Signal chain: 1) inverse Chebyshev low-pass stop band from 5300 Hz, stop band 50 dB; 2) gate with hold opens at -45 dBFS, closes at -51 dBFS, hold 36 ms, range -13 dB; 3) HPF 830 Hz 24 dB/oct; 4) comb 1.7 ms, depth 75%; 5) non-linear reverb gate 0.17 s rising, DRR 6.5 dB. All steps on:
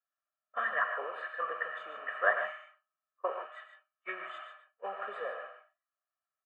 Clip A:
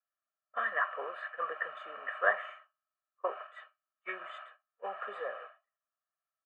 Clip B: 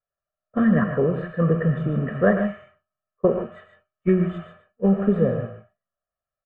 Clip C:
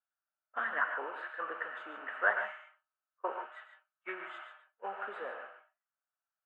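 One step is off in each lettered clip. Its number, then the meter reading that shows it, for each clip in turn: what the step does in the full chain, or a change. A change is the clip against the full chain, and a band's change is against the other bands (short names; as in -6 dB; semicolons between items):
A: 5, momentary loudness spread change +2 LU; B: 3, 250 Hz band +37.5 dB; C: 4, 250 Hz band +7.0 dB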